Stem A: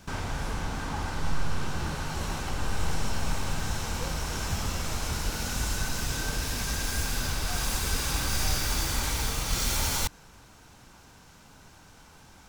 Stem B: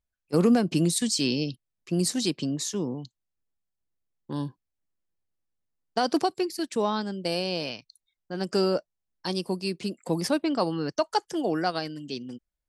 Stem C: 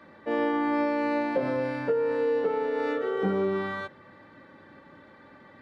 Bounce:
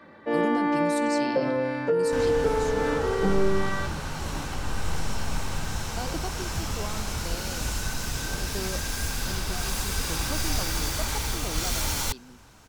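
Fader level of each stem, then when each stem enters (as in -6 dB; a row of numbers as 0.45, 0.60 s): 0.0, -11.5, +2.0 dB; 2.05, 0.00, 0.00 s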